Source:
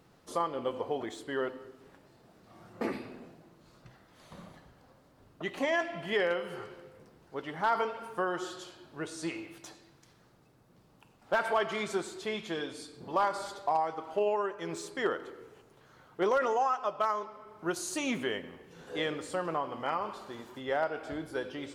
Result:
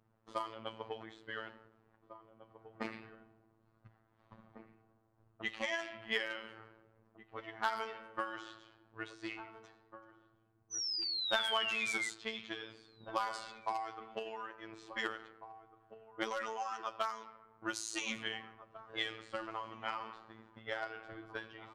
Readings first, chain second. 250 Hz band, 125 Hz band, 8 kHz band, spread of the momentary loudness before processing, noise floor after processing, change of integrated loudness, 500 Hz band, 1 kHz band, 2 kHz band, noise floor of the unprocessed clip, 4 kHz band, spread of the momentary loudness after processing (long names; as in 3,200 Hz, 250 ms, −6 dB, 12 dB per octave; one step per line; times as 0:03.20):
−10.5 dB, −11.5 dB, −2.0 dB, 17 LU, −73 dBFS, −6.0 dB, −12.5 dB, −8.5 dB, −2.5 dB, −63 dBFS, +3.5 dB, 23 LU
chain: transient designer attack +8 dB, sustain +4 dB
guitar amp tone stack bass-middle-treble 5-5-5
sound drawn into the spectrogram fall, 0:10.70–0:12.09, 2,000–6,100 Hz −41 dBFS
low-pass that shuts in the quiet parts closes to 880 Hz, open at −36.5 dBFS
phases set to zero 111 Hz
slap from a distant wall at 300 metres, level −12 dB
level +6.5 dB